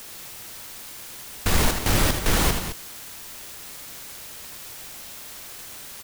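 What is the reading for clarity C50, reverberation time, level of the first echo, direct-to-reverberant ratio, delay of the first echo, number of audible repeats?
no reverb audible, no reverb audible, −7.5 dB, no reverb audible, 79 ms, 2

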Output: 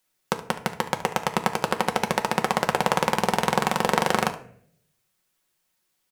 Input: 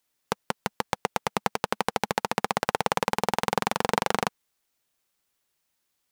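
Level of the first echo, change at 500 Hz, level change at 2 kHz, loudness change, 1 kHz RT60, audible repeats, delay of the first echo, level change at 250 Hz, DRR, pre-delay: −16.0 dB, +3.5 dB, +3.5 dB, +3.5 dB, 0.50 s, 1, 72 ms, +5.0 dB, 4.0 dB, 5 ms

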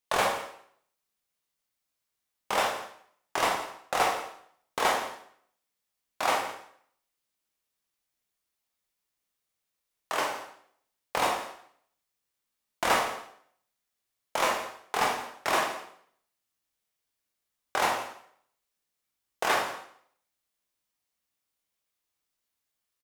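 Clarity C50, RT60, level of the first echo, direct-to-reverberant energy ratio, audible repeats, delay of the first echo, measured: 5.0 dB, 0.65 s, −16.0 dB, −0.5 dB, 1, 168 ms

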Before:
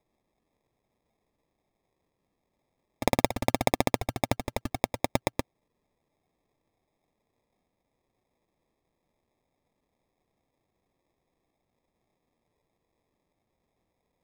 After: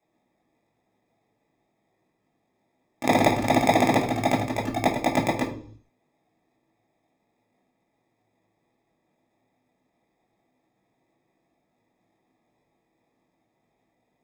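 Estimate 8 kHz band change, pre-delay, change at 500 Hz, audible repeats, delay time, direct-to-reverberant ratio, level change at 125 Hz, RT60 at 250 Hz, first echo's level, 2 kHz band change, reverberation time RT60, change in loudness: +1.5 dB, 16 ms, +6.0 dB, no echo audible, no echo audible, −7.0 dB, +4.5 dB, 0.65 s, no echo audible, +7.0 dB, 0.55 s, +6.0 dB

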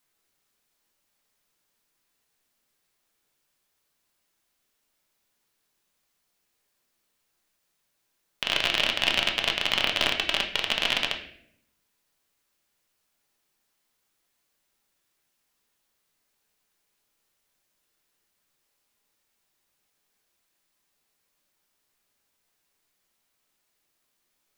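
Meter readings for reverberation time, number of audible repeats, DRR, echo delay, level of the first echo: 0.65 s, no echo audible, 2.0 dB, no echo audible, no echo audible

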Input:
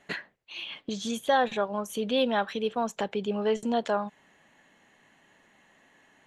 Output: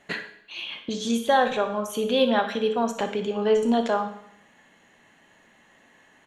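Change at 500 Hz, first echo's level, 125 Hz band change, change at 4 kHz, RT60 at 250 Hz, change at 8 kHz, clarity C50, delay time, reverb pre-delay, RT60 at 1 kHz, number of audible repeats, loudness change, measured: +5.0 dB, −13.0 dB, can't be measured, +4.0 dB, 0.70 s, +4.0 dB, 8.5 dB, 60 ms, 14 ms, 0.70 s, 1, +4.5 dB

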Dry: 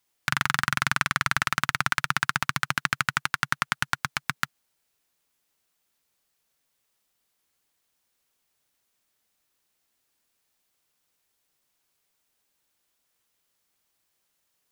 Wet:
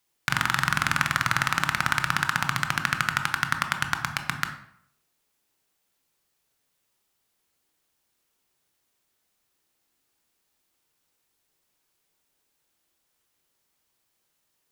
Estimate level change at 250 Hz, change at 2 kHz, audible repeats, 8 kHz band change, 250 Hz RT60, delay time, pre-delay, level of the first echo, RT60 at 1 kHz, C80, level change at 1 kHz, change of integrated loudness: +3.0 dB, +1.0 dB, no echo audible, +0.5 dB, 0.65 s, no echo audible, 17 ms, no echo audible, 0.70 s, 12.0 dB, +1.5 dB, +1.0 dB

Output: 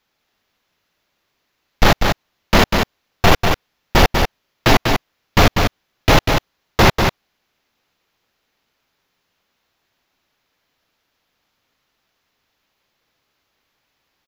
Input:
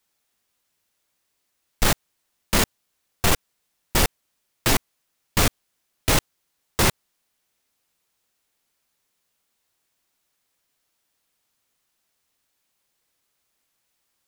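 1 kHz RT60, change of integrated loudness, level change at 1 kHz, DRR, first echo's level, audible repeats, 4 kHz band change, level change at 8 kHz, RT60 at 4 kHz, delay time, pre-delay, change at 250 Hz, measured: no reverb audible, +6.0 dB, +11.5 dB, no reverb audible, −5.0 dB, 1, +7.0 dB, −2.0 dB, no reverb audible, 194 ms, no reverb audible, +10.0 dB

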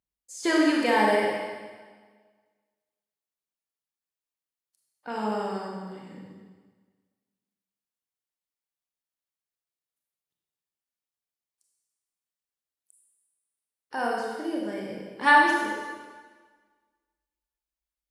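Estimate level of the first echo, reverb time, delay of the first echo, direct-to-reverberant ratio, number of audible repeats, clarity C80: no echo audible, 1.5 s, no echo audible, −2.5 dB, no echo audible, 2.0 dB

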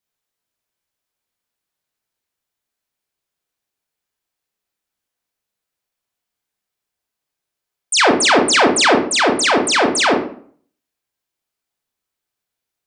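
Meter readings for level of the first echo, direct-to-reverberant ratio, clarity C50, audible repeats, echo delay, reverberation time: no echo audible, 1.0 dB, 6.0 dB, no echo audible, no echo audible, 0.50 s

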